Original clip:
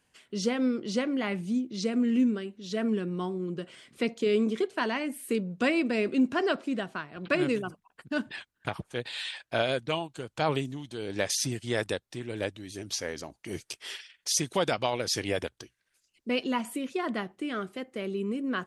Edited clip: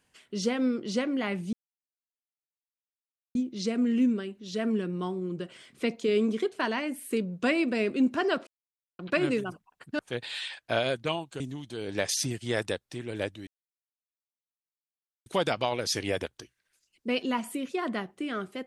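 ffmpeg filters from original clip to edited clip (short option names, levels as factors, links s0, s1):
-filter_complex "[0:a]asplit=8[s0][s1][s2][s3][s4][s5][s6][s7];[s0]atrim=end=1.53,asetpts=PTS-STARTPTS,afade=t=out:st=1.526:d=0.004:c=hsin,apad=pad_dur=1.82[s8];[s1]atrim=start=1.53:end=6.65,asetpts=PTS-STARTPTS,afade=t=in:d=0.004:c=hsin,afade=t=out:st=5.116:d=0.004:c=hsin[s9];[s2]atrim=start=6.65:end=7.17,asetpts=PTS-STARTPTS,volume=0[s10];[s3]atrim=start=7.17:end=8.172,asetpts=PTS-STARTPTS,afade=t=in:d=0.004:c=hsin[s11];[s4]atrim=start=8.818:end=10.232[s12];[s5]atrim=start=10.608:end=12.68,asetpts=PTS-STARTPTS,afade=t=out:st=2.068:d=0.004:c=hsin[s13];[s6]atrim=start=12.68:end=14.47,asetpts=PTS-STARTPTS,volume=0[s14];[s7]atrim=start=14.47,asetpts=PTS-STARTPTS,afade=t=in:d=0.004:c=hsin[s15];[s8][s9][s10][s11]concat=n=4:v=0:a=1[s16];[s16][s12]acrossfade=d=0.004:c1=hsin:c2=hsin[s17];[s13][s14][s15]concat=n=3:v=0:a=1[s18];[s17][s18]acrossfade=d=0.004:c1=hsin:c2=hsin"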